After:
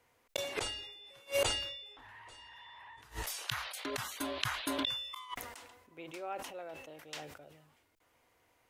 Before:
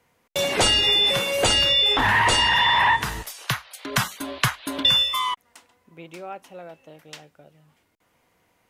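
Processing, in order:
parametric band 180 Hz −13.5 dB 0.5 octaves
gate with flip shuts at −15 dBFS, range −30 dB
level that may fall only so fast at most 52 dB per second
level −5 dB

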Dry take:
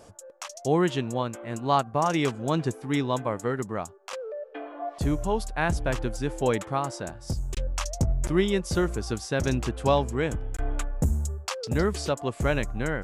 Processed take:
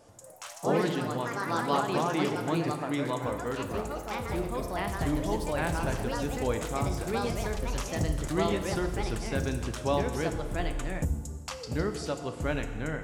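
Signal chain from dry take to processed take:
feedback delay network reverb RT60 1.6 s, low-frequency decay 1.05×, high-frequency decay 0.9×, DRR 6 dB
delay with pitch and tempo change per echo 84 ms, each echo +3 semitones, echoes 3
level −6.5 dB

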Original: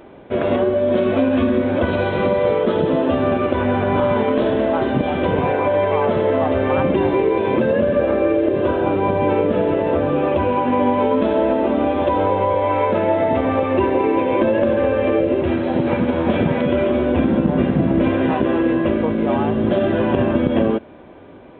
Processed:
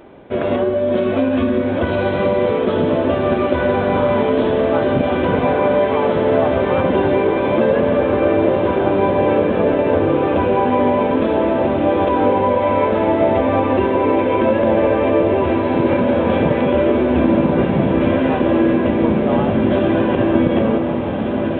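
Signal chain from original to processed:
feedback delay with all-pass diffusion 1,612 ms, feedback 64%, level −4.5 dB

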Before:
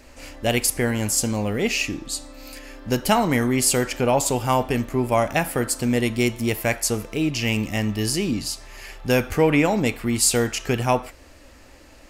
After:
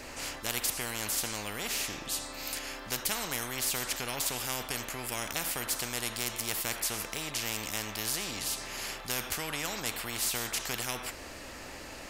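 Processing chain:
every bin compressed towards the loudest bin 4 to 1
level −8.5 dB

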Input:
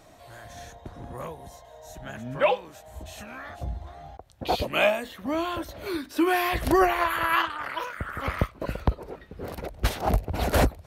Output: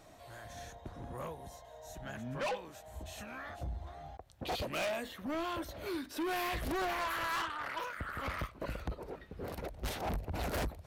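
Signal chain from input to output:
soft clipping −28 dBFS, distortion −5 dB
level −4.5 dB

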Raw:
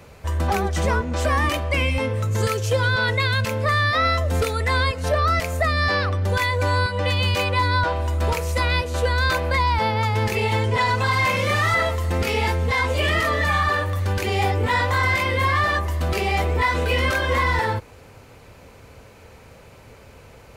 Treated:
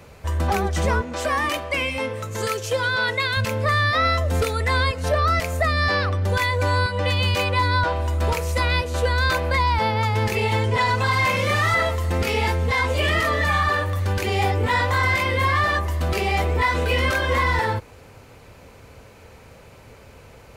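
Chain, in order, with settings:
0:01.02–0:03.37: high-pass filter 320 Hz 6 dB per octave

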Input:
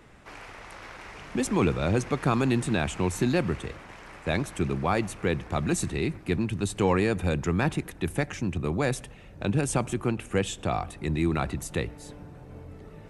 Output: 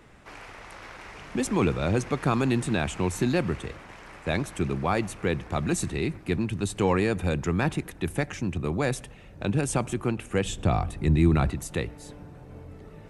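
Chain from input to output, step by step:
0:10.45–0:11.50: low-shelf EQ 220 Hz +10.5 dB

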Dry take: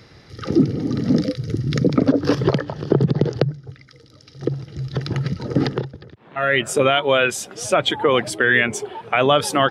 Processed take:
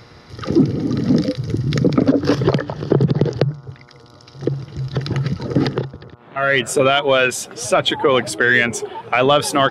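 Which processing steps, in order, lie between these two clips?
hum with harmonics 120 Hz, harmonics 12, −53 dBFS −1 dB per octave
in parallel at −5.5 dB: soft clipping −10.5 dBFS, distortion −14 dB
on the sum: level −1 dB

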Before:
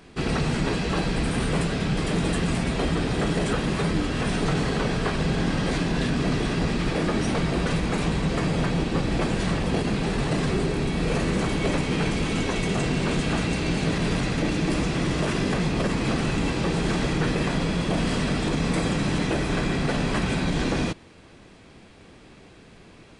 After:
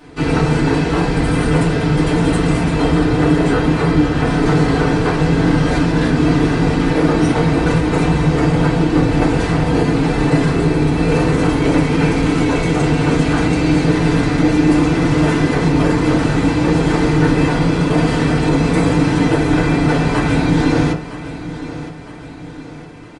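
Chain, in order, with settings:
0:03.03–0:04.44: high-shelf EQ 9,600 Hz −10.5 dB
repeating echo 962 ms, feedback 48%, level −14 dB
feedback delay network reverb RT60 0.37 s, low-frequency decay 0.9×, high-frequency decay 0.35×, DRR −6.5 dB
level +1 dB

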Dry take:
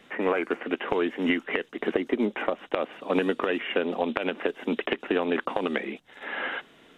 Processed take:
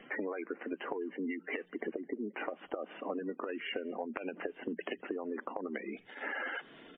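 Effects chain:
mains-hum notches 60/120/180 Hz
gate on every frequency bin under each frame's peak −15 dB strong
parametric band 300 Hz +2.5 dB 0.21 octaves
downward compressor 8 to 1, threshold −36 dBFS, peak gain reduction 16.5 dB
far-end echo of a speakerphone 210 ms, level −28 dB
level +1.5 dB
MP3 24 kbit/s 8,000 Hz

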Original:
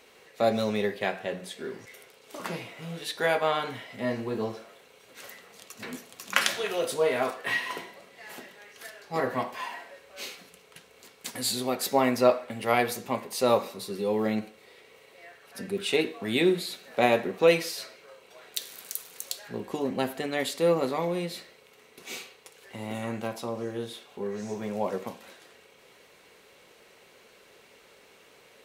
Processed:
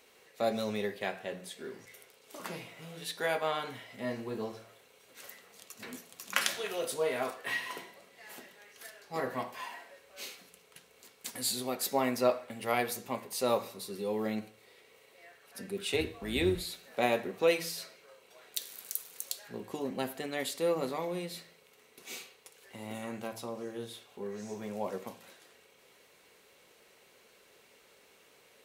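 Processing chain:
0:15.93–0:16.70: sub-octave generator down 2 octaves, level −4 dB
high-shelf EQ 6,700 Hz +6.5 dB
hum removal 56.2 Hz, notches 3
level −6.5 dB

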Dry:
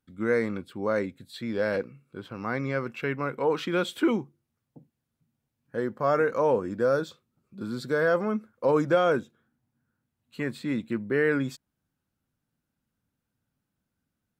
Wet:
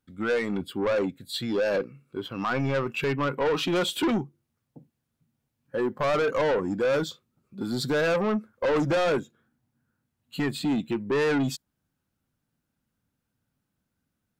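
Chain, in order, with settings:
noise reduction from a noise print of the clip's start 10 dB
in parallel at 0 dB: downward compressor, threshold −35 dBFS, peak gain reduction 16.5 dB
on the sum: soft clipping −27 dBFS, distortion −7 dB
level +6 dB

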